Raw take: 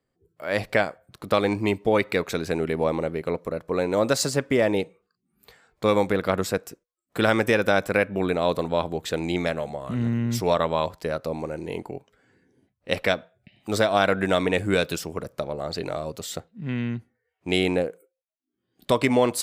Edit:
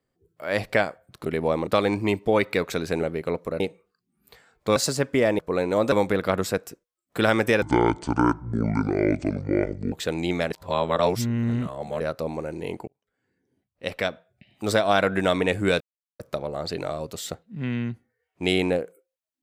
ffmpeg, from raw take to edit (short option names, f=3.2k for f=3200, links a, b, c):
-filter_complex "[0:a]asplit=15[a][b][c][d][e][f][g][h][i][j][k][l][m][n][o];[a]atrim=end=1.262[p];[b]atrim=start=2.618:end=3.032[q];[c]atrim=start=1.258:end=2.622[r];[d]atrim=start=3.028:end=3.602[s];[e]atrim=start=4.758:end=5.922[t];[f]atrim=start=4.128:end=4.762[u];[g]atrim=start=3.598:end=4.132[v];[h]atrim=start=5.918:end=7.624[w];[i]atrim=start=7.62:end=8.98,asetpts=PTS-STARTPTS,asetrate=26019,aresample=44100,atrim=end_sample=101654,asetpts=PTS-STARTPTS[x];[j]atrim=start=8.976:end=9.562[y];[k]atrim=start=9.558:end=11.062,asetpts=PTS-STARTPTS,areverse[z];[l]atrim=start=11.058:end=11.93,asetpts=PTS-STARTPTS,afade=t=out:st=0.868:d=0.004:c=hsin[aa];[m]atrim=start=11.93:end=14.86,asetpts=PTS-STARTPTS,afade=t=in:d=1.78,afade=t=out:st=2.926:d=0.004:c=hsin[ab];[n]atrim=start=14.86:end=15.25,asetpts=PTS-STARTPTS,volume=0[ac];[o]atrim=start=15.25,asetpts=PTS-STARTPTS,afade=t=in:d=0.004:c=hsin[ad];[p][q]acrossfade=d=0.004:c1=hsin:c2=hsin[ae];[ae][r]acrossfade=d=0.004:c1=hsin:c2=hsin[af];[af][s]acrossfade=d=0.004:c1=hsin:c2=hsin[ag];[ag][t]acrossfade=d=0.004:c1=hsin:c2=hsin[ah];[ah][u]acrossfade=d=0.004:c1=hsin:c2=hsin[ai];[ai][v]acrossfade=d=0.004:c1=hsin:c2=hsin[aj];[aj][w]acrossfade=d=0.004:c1=hsin:c2=hsin[ak];[ak][x]acrossfade=d=0.004:c1=hsin:c2=hsin[al];[al][y]acrossfade=d=0.004:c1=hsin:c2=hsin[am];[am][z]acrossfade=d=0.004:c1=hsin:c2=hsin[an];[aa][ab][ac][ad]concat=n=4:v=0:a=1[ao];[an][ao]acrossfade=d=0.004:c1=hsin:c2=hsin"